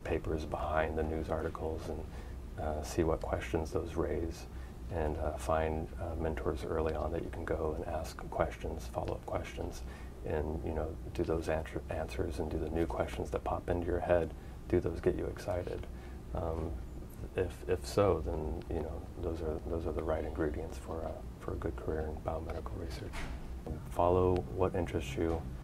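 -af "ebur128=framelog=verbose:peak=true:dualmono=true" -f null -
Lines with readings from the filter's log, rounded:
Integrated loudness:
  I:         -33.5 LUFS
  Threshold: -43.6 LUFS
Loudness range:
  LRA:         3.7 LU
  Threshold: -53.9 LUFS
  LRA low:   -35.7 LUFS
  LRA high:  -32.0 LUFS
True peak:
  Peak:      -13.1 dBFS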